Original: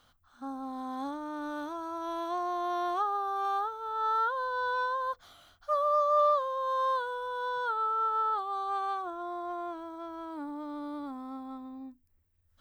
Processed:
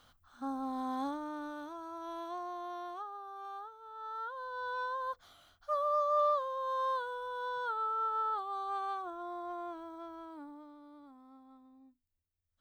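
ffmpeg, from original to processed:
-af "volume=10.5dB,afade=t=out:st=0.91:d=0.65:silence=0.398107,afade=t=out:st=2.19:d=0.91:silence=0.446684,afade=t=in:st=4.1:d=1.01:silence=0.334965,afade=t=out:st=9.98:d=0.79:silence=0.251189"

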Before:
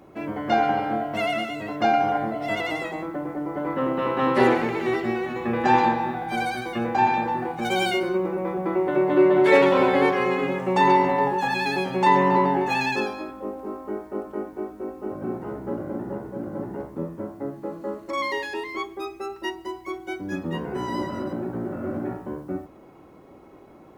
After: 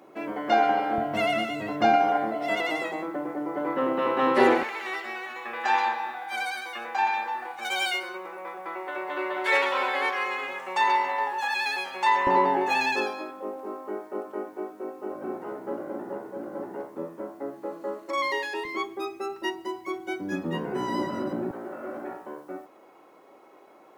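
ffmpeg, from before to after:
-af "asetnsamples=n=441:p=0,asendcmd='0.98 highpass f 96;1.96 highpass f 270;4.63 highpass f 1000;12.27 highpass f 370;18.65 highpass f 160;21.51 highpass f 510',highpass=310"

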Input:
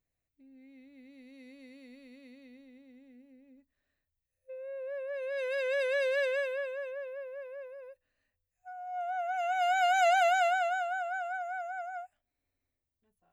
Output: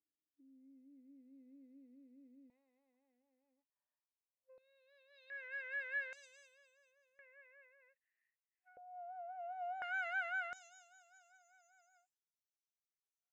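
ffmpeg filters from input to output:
-af "asetnsamples=n=441:p=0,asendcmd='2.5 bandpass f 930;4.58 bandpass f 4000;5.3 bandpass f 1800;6.13 bandpass f 6700;7.19 bandpass f 2000;8.77 bandpass f 510;9.82 bandpass f 1700;10.53 bandpass f 6000',bandpass=f=310:t=q:w=7.4:csg=0"

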